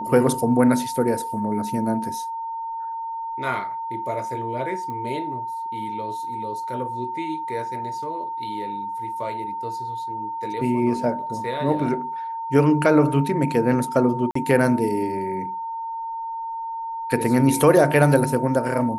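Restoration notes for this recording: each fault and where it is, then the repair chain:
whistle 910 Hz −27 dBFS
0:04.90: click −22 dBFS
0:14.31–0:14.35: drop-out 44 ms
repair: click removal
notch filter 910 Hz, Q 30
repair the gap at 0:14.31, 44 ms

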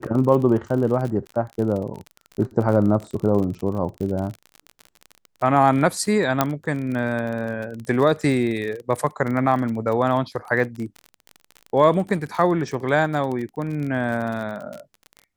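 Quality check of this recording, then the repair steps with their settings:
surface crackle 39 per second −28 dBFS
0:06.41: click −3 dBFS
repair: click removal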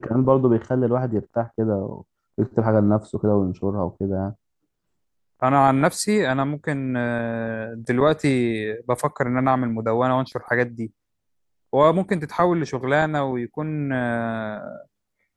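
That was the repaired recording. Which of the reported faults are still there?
none of them is left

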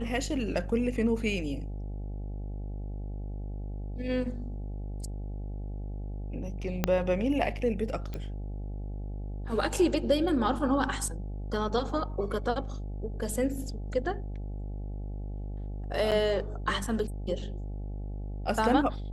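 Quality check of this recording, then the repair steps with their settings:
mains buzz 50 Hz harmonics 17 −36 dBFS
0:06.84: click −10 dBFS
0:08.14: click −24 dBFS
0:16.11–0:16.12: drop-out 7.4 ms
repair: click removal
hum removal 50 Hz, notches 17
repair the gap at 0:16.11, 7.4 ms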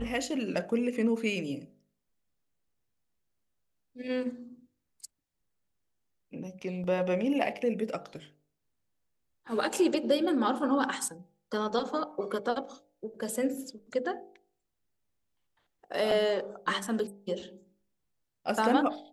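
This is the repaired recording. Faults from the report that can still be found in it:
0:06.84: click

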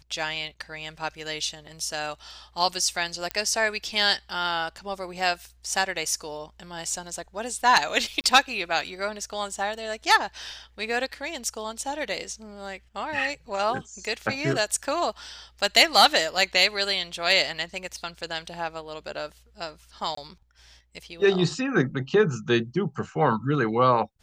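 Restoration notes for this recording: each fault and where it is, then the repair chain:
0:03.31: click −12 dBFS
0:08.21–0:08.24: drop-out 29 ms
0:20.15–0:20.17: drop-out 24 ms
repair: click removal
repair the gap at 0:08.21, 29 ms
repair the gap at 0:20.15, 24 ms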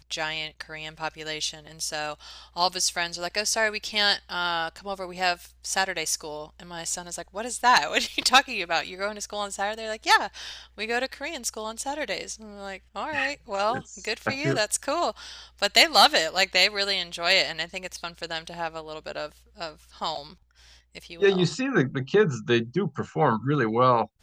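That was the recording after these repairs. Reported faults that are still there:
none of them is left

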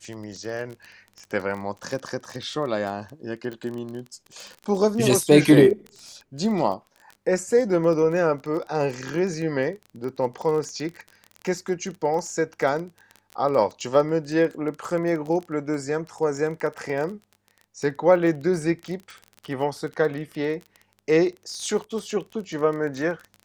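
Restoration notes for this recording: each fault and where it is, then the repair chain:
surface crackle 23 per second −30 dBFS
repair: click removal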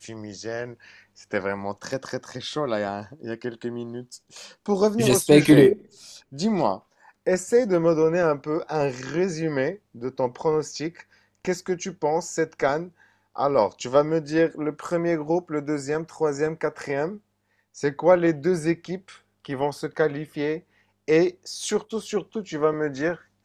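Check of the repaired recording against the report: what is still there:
none of them is left

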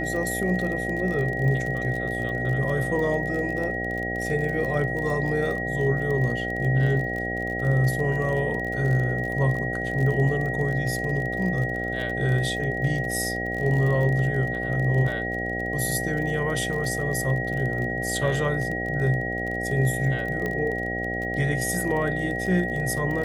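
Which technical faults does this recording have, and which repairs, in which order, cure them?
mains buzz 60 Hz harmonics 13 −31 dBFS
surface crackle 33 per second −30 dBFS
whistle 1,900 Hz −29 dBFS
0:20.46: click −16 dBFS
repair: click removal
hum removal 60 Hz, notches 13
notch filter 1,900 Hz, Q 30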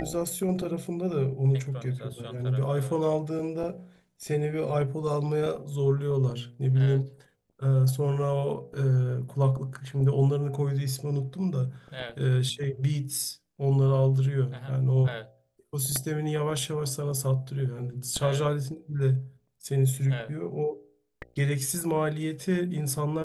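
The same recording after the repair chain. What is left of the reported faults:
none of them is left

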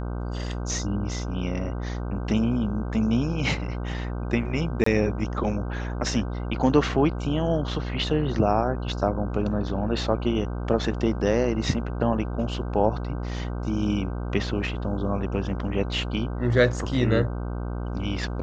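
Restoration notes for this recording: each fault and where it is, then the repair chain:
mains buzz 60 Hz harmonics 26 −30 dBFS
0:04.84–0:04.86: drop-out 24 ms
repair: hum removal 60 Hz, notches 26
repair the gap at 0:04.84, 24 ms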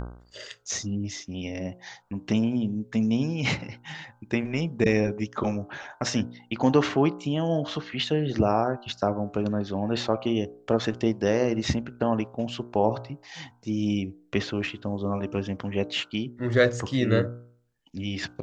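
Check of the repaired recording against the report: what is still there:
none of them is left

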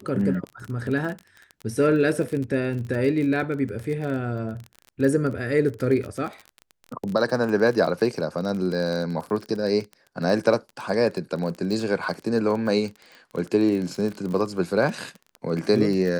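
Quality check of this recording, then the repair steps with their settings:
surface crackle 28 per second −29 dBFS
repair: click removal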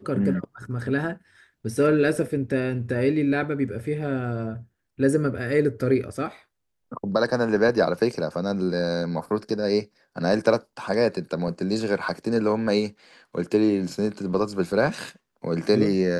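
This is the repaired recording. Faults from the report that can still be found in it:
none of them is left

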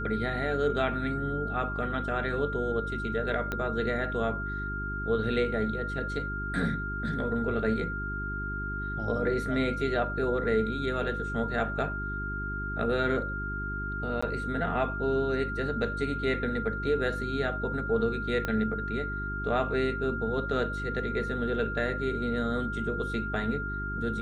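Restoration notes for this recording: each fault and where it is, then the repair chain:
mains hum 50 Hz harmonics 8 −36 dBFS
whistle 1,400 Hz −34 dBFS
0:03.52: click −18 dBFS
0:14.21–0:14.22: drop-out 15 ms
0:18.45: click −17 dBFS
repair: click removal
hum removal 50 Hz, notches 8
notch filter 1,400 Hz, Q 30
repair the gap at 0:14.21, 15 ms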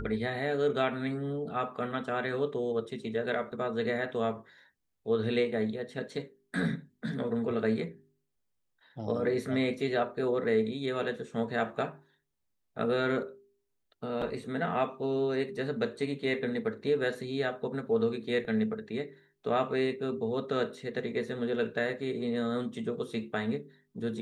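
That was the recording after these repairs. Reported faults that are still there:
0:03.52: click
0:18.45: click

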